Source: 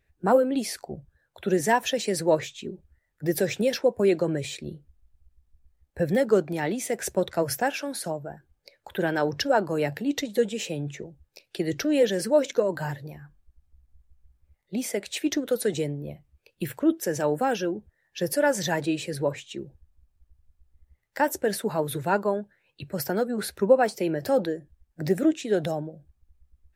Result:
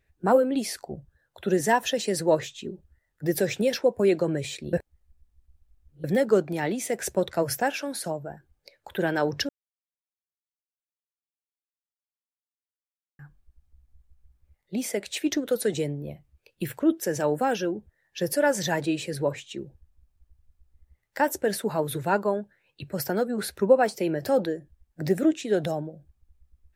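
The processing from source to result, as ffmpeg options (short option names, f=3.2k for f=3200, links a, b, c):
-filter_complex "[0:a]asettb=1/sr,asplit=3[a][b][c];[a]atrim=end=0.724[d];[b]atrim=start=0.72:end=3.29,asetpts=PTS-STARTPTS,afade=t=in:d=0.004:c=qsin,afade=t=out:st=2.566:d=0.004:c=qsin,bandreject=f=2.3k:w=12[e];[c]atrim=start=3.286[f];[d][e]acrossfade=d=0.004:c1=hsin:c2=qsin[g];[g][f]acrossfade=d=0.004:c1=qsin:c2=hsin,asplit=5[h][i][j][k][l];[h]atrim=end=4.732[m];[i]atrim=start=4.728:end=6.042,asetpts=PTS-STARTPTS,areverse[n];[j]atrim=start=6.038:end=9.49,asetpts=PTS-STARTPTS,afade=t=out:st=3.448:d=0.004:c=hsin[o];[k]atrim=start=9.49:end=13.19,asetpts=PTS-STARTPTS,volume=0[p];[l]atrim=start=13.19,asetpts=PTS-STARTPTS,afade=t=in:d=0.004:c=hsin[q];[m][n]acrossfade=d=0.004:c1=hsin:c2=hsin[r];[o][p][q]concat=n=3:v=0:a=1[s];[r][s]acrossfade=d=0.004:c1=hsin:c2=hsin"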